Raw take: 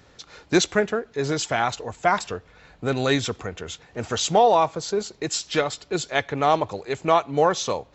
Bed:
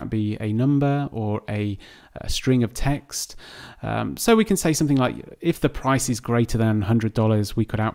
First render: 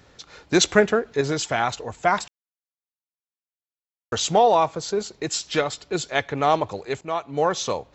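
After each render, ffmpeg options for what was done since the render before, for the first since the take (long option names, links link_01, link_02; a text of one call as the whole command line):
ffmpeg -i in.wav -filter_complex "[0:a]asplit=6[link_01][link_02][link_03][link_04][link_05][link_06];[link_01]atrim=end=0.612[link_07];[link_02]atrim=start=0.608:end=1.212,asetpts=PTS-STARTPTS,volume=4.5dB[link_08];[link_03]atrim=start=1.208:end=2.28,asetpts=PTS-STARTPTS,afade=type=out:start_time=1.068:duration=0.004:curve=hsin[link_09];[link_04]atrim=start=2.28:end=4.12,asetpts=PTS-STARTPTS,volume=0[link_10];[link_05]atrim=start=4.12:end=7.01,asetpts=PTS-STARTPTS,afade=type=in:duration=0.004:curve=hsin,afade=type=out:start_time=2.886:duration=0.004:curve=hsin:silence=0.237137[link_11];[link_06]atrim=start=7.01,asetpts=PTS-STARTPTS,afade=type=in:duration=0.62:silence=0.237137[link_12];[link_07][link_08]acrossfade=duration=0.004:curve1=hsin:curve2=hsin[link_13];[link_09][link_10][link_11][link_12]concat=n=4:v=0:a=1[link_14];[link_13][link_14]acrossfade=duration=0.004:curve1=hsin:curve2=hsin" out.wav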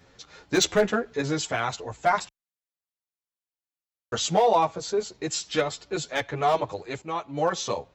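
ffmpeg -i in.wav -filter_complex "[0:a]asoftclip=type=hard:threshold=-9.5dB,asplit=2[link_01][link_02];[link_02]adelay=9.4,afreqshift=2.8[link_03];[link_01][link_03]amix=inputs=2:normalize=1" out.wav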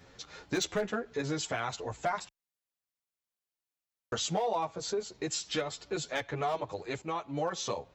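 ffmpeg -i in.wav -af "acompressor=threshold=-33dB:ratio=2.5" out.wav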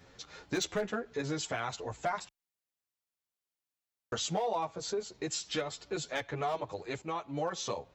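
ffmpeg -i in.wav -af "volume=-1.5dB" out.wav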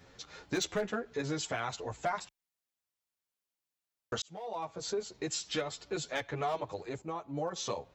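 ffmpeg -i in.wav -filter_complex "[0:a]asettb=1/sr,asplit=3[link_01][link_02][link_03];[link_01]atrim=end=6.894[link_04];[link_02]atrim=start=6.89:end=7.56,asetpts=PTS-STARTPTS,afade=type=in:duration=0.004:curve=qsin,afade=type=out:start_time=0.666:duration=0.004:curve=qsin,equalizer=frequency=2900:width_type=o:width=2.3:gain=-9.5[link_05];[link_03]atrim=start=7.556[link_06];[link_04][link_05]acrossfade=duration=0.004:curve1=hsin:curve2=qsin[link_07];[link_07][link_06]acrossfade=duration=0.004:curve1=qsin:curve2=hsin,asplit=2[link_08][link_09];[link_08]atrim=end=4.22,asetpts=PTS-STARTPTS,afade=type=out:start_time=4.216:duration=0.004:curve=hsin[link_10];[link_09]atrim=start=4.22,asetpts=PTS-STARTPTS,afade=type=in:duration=0.65[link_11];[link_10][link_11]concat=n=2:v=0:a=1" out.wav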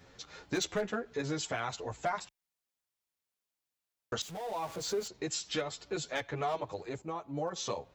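ffmpeg -i in.wav -filter_complex "[0:a]asettb=1/sr,asplit=3[link_01][link_02][link_03];[link_01]atrim=end=4.214[link_04];[link_02]atrim=start=4.21:end=5.08,asetpts=PTS-STARTPTS,afade=type=in:duration=0.004:curve=qsin,afade=type=out:start_time=0.866:duration=0.004:curve=qsin,aeval=exprs='val(0)+0.5*0.00708*sgn(val(0))':channel_layout=same[link_05];[link_03]atrim=start=5.076[link_06];[link_04][link_05]acrossfade=duration=0.004:curve1=hsin:curve2=qsin[link_07];[link_07][link_06]acrossfade=duration=0.004:curve1=qsin:curve2=hsin" out.wav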